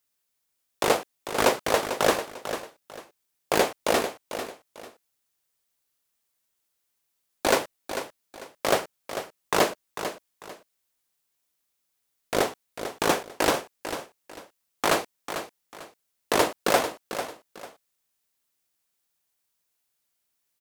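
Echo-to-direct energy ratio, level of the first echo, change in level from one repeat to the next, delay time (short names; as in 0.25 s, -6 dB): -9.5 dB, -10.0 dB, -11.0 dB, 0.446 s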